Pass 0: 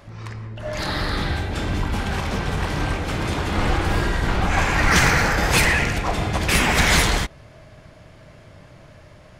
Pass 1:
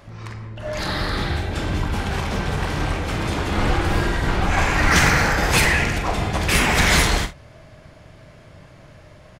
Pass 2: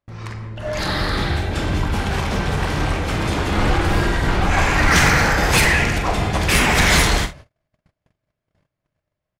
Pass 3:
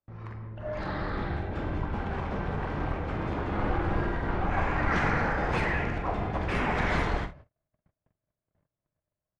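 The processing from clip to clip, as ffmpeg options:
-af "aecho=1:1:43|69:0.299|0.126"
-af "agate=range=-39dB:threshold=-39dB:ratio=16:detection=peak,acontrast=63,volume=-3.5dB"
-filter_complex "[0:a]aemphasis=mode=production:type=cd,acrossover=split=220[a][b];[a]aeval=exprs='clip(val(0),-1,0.0447)':c=same[c];[c][b]amix=inputs=2:normalize=0,lowpass=1.4k,volume=-8.5dB"

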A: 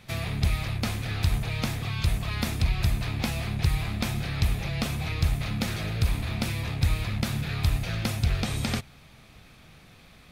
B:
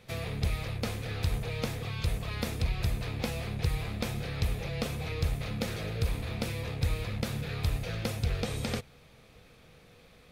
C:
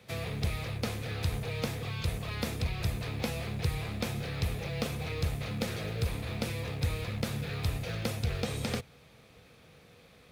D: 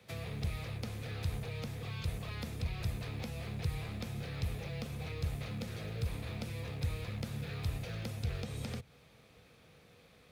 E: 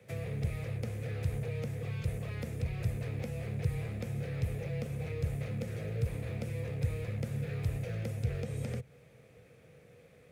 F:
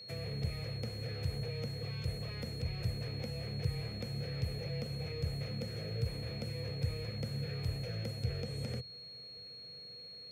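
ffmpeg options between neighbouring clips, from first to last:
-af "equalizer=f=480:t=o:w=0.39:g=12.5,volume=-5.5dB"
-filter_complex "[0:a]highpass=64,acrossover=split=120|1500|2000[a][b][c][d];[b]acrusher=bits=6:mode=log:mix=0:aa=0.000001[e];[a][e][c][d]amix=inputs=4:normalize=0"
-filter_complex "[0:a]acrossover=split=200[a][b];[b]acompressor=threshold=-39dB:ratio=6[c];[a][c]amix=inputs=2:normalize=0,volume=-4dB"
-af "equalizer=f=125:t=o:w=1:g=9,equalizer=f=500:t=o:w=1:g=10,equalizer=f=1k:t=o:w=1:g=-5,equalizer=f=2k:t=o:w=1:g=6,equalizer=f=4k:t=o:w=1:g=-8,equalizer=f=8k:t=o:w=1:g=4,volume=-3dB"
-af "aeval=exprs='val(0)+0.00562*sin(2*PI*4300*n/s)':c=same,bandreject=f=50:t=h:w=6,bandreject=f=100:t=h:w=6,volume=-2.5dB"

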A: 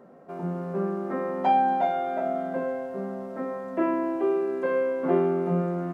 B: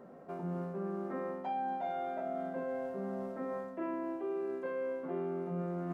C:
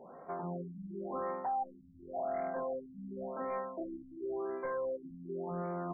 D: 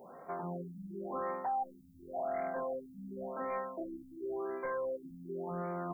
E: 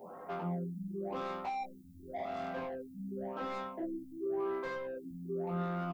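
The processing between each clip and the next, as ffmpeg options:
-af "lowshelf=f=64:g=6.5,areverse,acompressor=threshold=-33dB:ratio=6,areverse,volume=-2dB"
-af "equalizer=f=125:t=o:w=1:g=-3,equalizer=f=250:t=o:w=1:g=-4,equalizer=f=1k:t=o:w=1:g=9,volume=31.5dB,asoftclip=hard,volume=-31.5dB,afftfilt=real='re*lt(b*sr/1024,290*pow(2400/290,0.5+0.5*sin(2*PI*0.92*pts/sr)))':imag='im*lt(b*sr/1024,290*pow(2400/290,0.5+0.5*sin(2*PI*0.92*pts/sr)))':win_size=1024:overlap=0.75"
-af "crystalizer=i=4.5:c=0,volume=-1dB"
-filter_complex "[0:a]acrossover=split=430[a][b];[b]asoftclip=type=tanh:threshold=-40dB[c];[a][c]amix=inputs=2:normalize=0,aecho=1:1:10|22:0.668|0.631,volume=1dB"

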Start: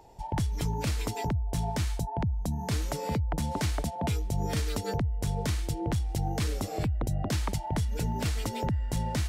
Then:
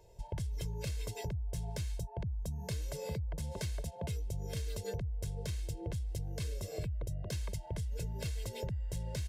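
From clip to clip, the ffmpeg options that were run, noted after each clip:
-af "equalizer=f=1.1k:t=o:w=1.1:g=-10.5,aecho=1:1:1.9:0.94,acompressor=threshold=-28dB:ratio=6,volume=-6.5dB"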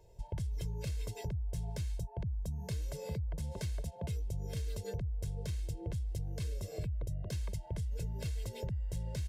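-af "lowshelf=f=330:g=4.5,volume=-3.5dB"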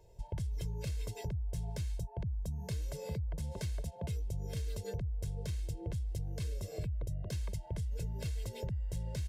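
-af anull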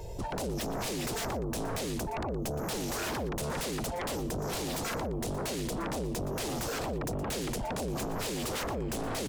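-af "alimiter=level_in=9dB:limit=-24dB:level=0:latency=1:release=32,volume=-9dB,aeval=exprs='0.0237*sin(PI/2*5.62*val(0)/0.0237)':c=same,aecho=1:1:118:0.178,volume=1.5dB"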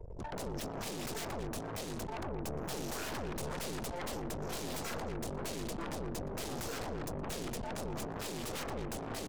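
-filter_complex "[0:a]asplit=2[a][b];[b]adelay=221.6,volume=-8dB,highshelf=f=4k:g=-4.99[c];[a][c]amix=inputs=2:normalize=0,aeval=exprs='(tanh(44.7*val(0)+0.75)-tanh(0.75))/44.7':c=same,anlmdn=0.0631,volume=-1.5dB"

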